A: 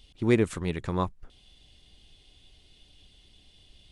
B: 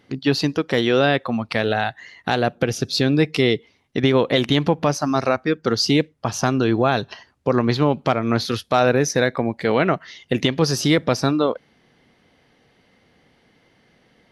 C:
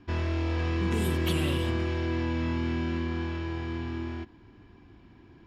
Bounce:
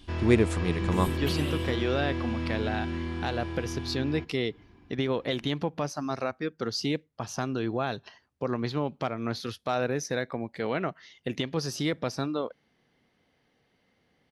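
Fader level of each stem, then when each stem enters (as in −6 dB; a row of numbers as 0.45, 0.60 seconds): +1.0, −11.5, −2.5 decibels; 0.00, 0.95, 0.00 seconds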